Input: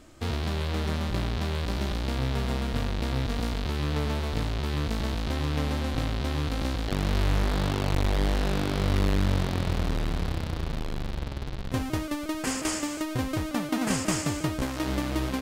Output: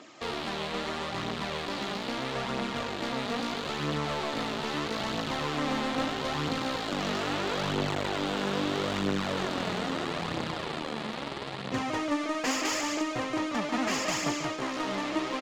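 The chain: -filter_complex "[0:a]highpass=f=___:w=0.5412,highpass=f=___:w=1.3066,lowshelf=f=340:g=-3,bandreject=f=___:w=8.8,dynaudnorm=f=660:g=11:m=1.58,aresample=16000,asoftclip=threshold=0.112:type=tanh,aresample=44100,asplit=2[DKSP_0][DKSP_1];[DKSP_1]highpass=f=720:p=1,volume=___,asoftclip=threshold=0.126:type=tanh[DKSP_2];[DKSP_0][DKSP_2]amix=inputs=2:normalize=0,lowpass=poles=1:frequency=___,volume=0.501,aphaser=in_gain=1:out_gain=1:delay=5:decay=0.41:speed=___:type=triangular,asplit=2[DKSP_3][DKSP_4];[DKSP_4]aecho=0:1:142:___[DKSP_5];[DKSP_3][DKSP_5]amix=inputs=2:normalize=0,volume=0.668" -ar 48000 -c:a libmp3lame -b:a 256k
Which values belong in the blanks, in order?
140, 140, 1500, 7.08, 3900, 0.77, 0.299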